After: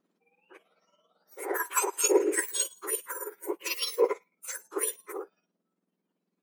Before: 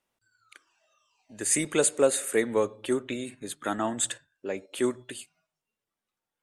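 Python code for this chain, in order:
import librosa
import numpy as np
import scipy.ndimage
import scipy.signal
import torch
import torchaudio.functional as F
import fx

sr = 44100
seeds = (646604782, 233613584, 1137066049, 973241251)

y = fx.octave_mirror(x, sr, pivot_hz=1900.0)
y = y * (1.0 - 0.52 / 2.0 + 0.52 / 2.0 * np.cos(2.0 * np.pi * 18.0 * (np.arange(len(y)) / sr)))
y = fx.low_shelf_res(y, sr, hz=680.0, db=-10.0, q=3.0, at=(1.43, 2.04))
y = y * 10.0 ** (3.5 / 20.0)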